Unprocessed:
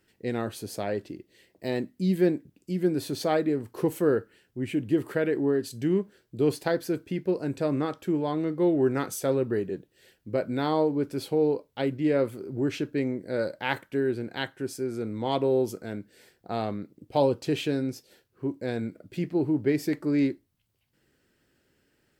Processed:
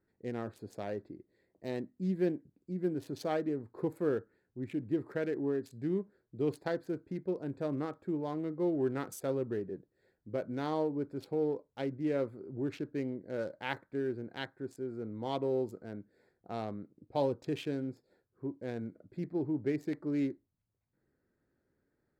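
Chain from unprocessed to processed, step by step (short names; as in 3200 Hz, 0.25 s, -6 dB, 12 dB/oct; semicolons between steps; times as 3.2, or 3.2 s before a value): Wiener smoothing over 15 samples; gain -8 dB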